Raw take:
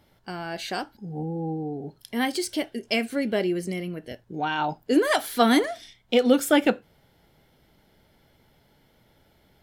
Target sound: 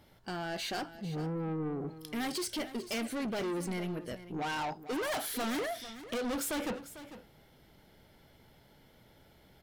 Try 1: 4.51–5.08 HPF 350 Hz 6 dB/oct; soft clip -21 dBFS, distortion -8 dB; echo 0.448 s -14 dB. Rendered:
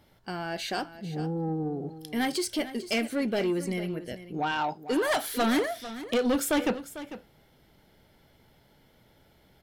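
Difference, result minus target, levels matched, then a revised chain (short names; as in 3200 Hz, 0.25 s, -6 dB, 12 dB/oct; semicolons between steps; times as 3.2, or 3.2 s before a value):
soft clip: distortion -6 dB
4.51–5.08 HPF 350 Hz 6 dB/oct; soft clip -32.5 dBFS, distortion -2 dB; echo 0.448 s -14 dB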